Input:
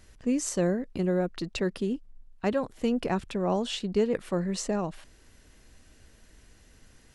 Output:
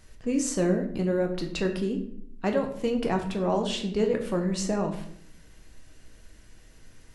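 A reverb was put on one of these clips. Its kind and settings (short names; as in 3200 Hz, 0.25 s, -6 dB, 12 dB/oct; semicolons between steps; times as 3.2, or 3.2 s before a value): shoebox room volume 120 m³, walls mixed, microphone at 0.6 m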